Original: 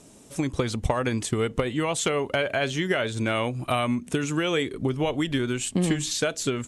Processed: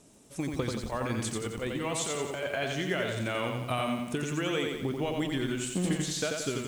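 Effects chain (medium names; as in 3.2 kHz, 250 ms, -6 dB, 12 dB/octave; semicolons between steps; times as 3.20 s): 0.80–2.57 s: compressor with a negative ratio -26 dBFS, ratio -0.5; bit-crushed delay 88 ms, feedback 55%, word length 8-bit, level -3.5 dB; trim -7 dB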